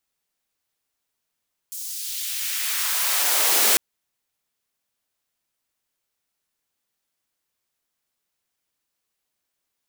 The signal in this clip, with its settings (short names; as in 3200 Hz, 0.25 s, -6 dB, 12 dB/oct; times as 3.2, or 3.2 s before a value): swept filtered noise white, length 2.05 s highpass, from 6900 Hz, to 310 Hz, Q 1.1, exponential, gain ramp +16 dB